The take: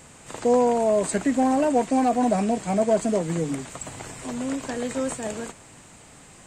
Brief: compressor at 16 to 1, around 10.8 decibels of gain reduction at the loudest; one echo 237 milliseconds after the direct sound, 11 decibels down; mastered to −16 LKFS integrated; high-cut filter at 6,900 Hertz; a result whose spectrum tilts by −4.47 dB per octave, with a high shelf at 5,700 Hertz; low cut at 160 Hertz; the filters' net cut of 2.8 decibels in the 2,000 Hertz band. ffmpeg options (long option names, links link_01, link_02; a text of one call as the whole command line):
ffmpeg -i in.wav -af "highpass=160,lowpass=6900,equalizer=frequency=2000:width_type=o:gain=-4.5,highshelf=frequency=5700:gain=8,acompressor=threshold=-27dB:ratio=16,aecho=1:1:237:0.282,volume=16dB" out.wav